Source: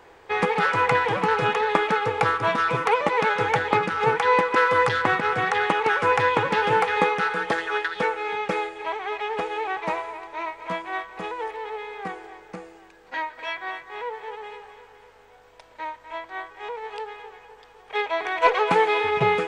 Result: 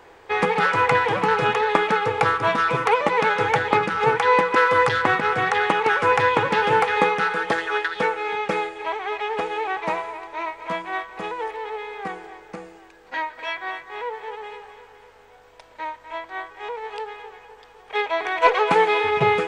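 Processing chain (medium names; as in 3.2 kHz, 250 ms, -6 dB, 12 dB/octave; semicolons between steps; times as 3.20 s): hum notches 60/120/180 Hz; trim +2 dB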